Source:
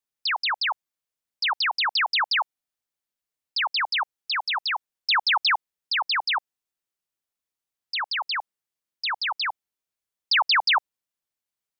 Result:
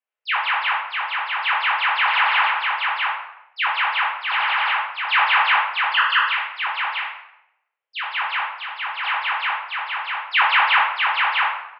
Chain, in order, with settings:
elliptic band-pass filter 450–2,800 Hz, stop band 40 dB
0:06.33–0:08.07: downward compressor, threshold −30 dBFS, peak gain reduction 7.5 dB
on a send: single-tap delay 648 ms −3.5 dB
on the sum: rectangular room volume 270 cubic metres, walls mixed, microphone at 2 metres
every ending faded ahead of time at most 440 dB per second

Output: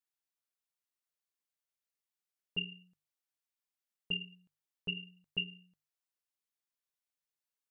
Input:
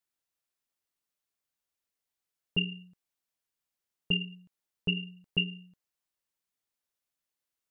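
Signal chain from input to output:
low-shelf EQ 500 Hz −6.5 dB
mains-hum notches 50/100/150 Hz
level −6 dB

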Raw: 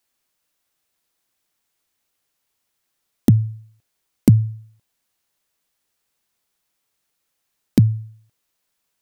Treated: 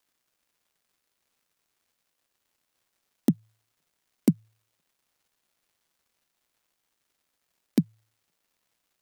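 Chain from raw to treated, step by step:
elliptic high-pass filter 160 Hz, stop band 40 dB
surface crackle 380 per second −57 dBFS
level −5.5 dB

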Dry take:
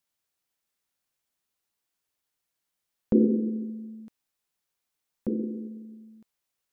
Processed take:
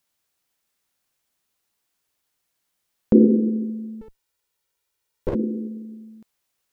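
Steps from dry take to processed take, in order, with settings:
0:04.01–0:05.35: lower of the sound and its delayed copy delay 2.1 ms
level +7 dB

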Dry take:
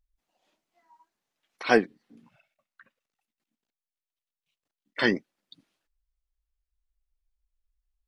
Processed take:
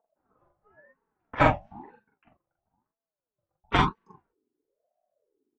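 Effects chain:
gliding playback speed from 113% → 176%
low-pass that shuts in the quiet parts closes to 780 Hz, open at −22 dBFS
low-shelf EQ 430 Hz +11.5 dB
downward compressor 12 to 1, threshold −20 dBFS, peak gain reduction 11 dB
high-frequency loss of the air 59 metres
double-tracking delay 43 ms −2 dB
convolution reverb, pre-delay 3 ms, DRR 4 dB
ring modulator whose carrier an LFO sweeps 500 Hz, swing 35%, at 1 Hz
level −1.5 dB

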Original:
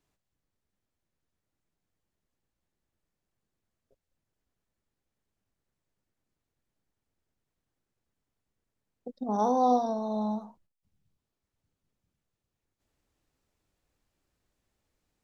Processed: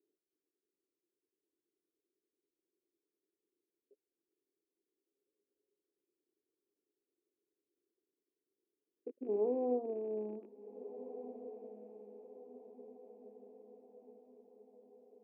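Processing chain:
loose part that buzzes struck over −47 dBFS, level −19 dBFS
flat-topped band-pass 370 Hz, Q 3.1
feedback delay with all-pass diffusion 1,602 ms, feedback 50%, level −12 dB
level +6 dB

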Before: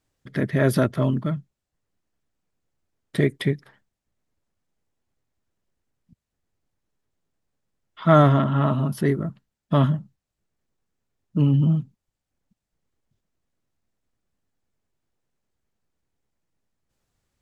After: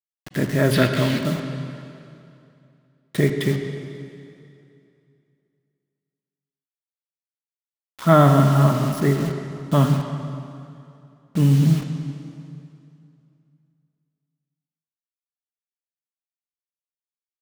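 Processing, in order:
bit reduction 6 bits
0:00.71–0:01.19: flat-topped bell 2,700 Hz +10.5 dB
convolution reverb RT60 2.6 s, pre-delay 38 ms, DRR 5.5 dB
level +1 dB

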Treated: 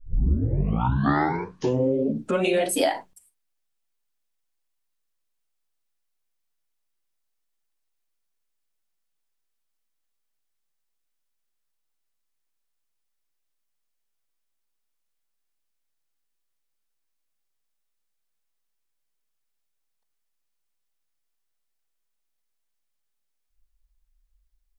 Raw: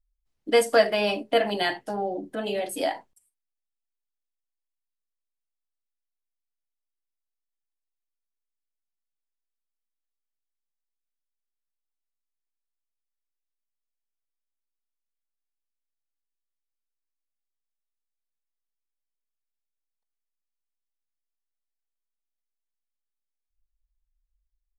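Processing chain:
turntable start at the beginning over 2.80 s
mains-hum notches 60/120/180 Hz
downward compressor, threshold −27 dBFS, peak gain reduction 8.5 dB
level +9 dB

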